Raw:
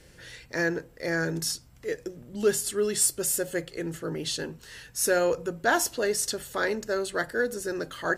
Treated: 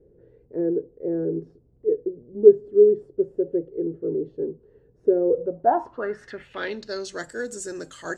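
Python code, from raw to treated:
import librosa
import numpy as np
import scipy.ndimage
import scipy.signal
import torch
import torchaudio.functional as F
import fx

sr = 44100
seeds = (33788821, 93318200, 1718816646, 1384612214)

y = fx.dynamic_eq(x, sr, hz=290.0, q=0.99, threshold_db=-39.0, ratio=4.0, max_db=5)
y = fx.filter_sweep_lowpass(y, sr, from_hz=420.0, to_hz=7600.0, start_s=5.29, end_s=7.26, q=5.9)
y = F.gain(torch.from_numpy(y), -6.0).numpy()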